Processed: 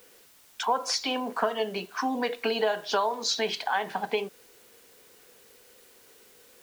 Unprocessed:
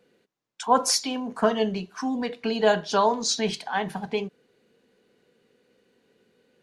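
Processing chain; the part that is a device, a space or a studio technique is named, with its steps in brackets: baby monitor (BPF 420–4400 Hz; compressor, threshold -30 dBFS, peak gain reduction 14.5 dB; white noise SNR 26 dB); gain +6.5 dB

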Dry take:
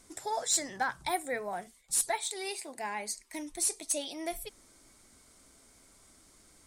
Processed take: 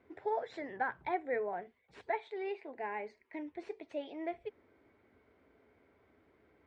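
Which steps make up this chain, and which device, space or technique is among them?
bass cabinet (speaker cabinet 69–2300 Hz, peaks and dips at 140 Hz -5 dB, 200 Hz -4 dB, 430 Hz +8 dB, 1200 Hz -6 dB); gain -2.5 dB

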